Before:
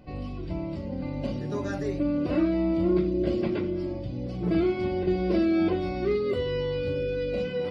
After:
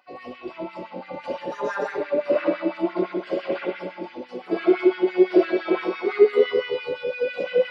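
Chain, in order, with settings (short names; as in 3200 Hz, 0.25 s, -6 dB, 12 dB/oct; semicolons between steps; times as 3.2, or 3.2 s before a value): spring tank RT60 1.5 s, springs 60 ms, chirp 80 ms, DRR -6 dB; LFO high-pass sine 5.9 Hz 390–1800 Hz; gain -1.5 dB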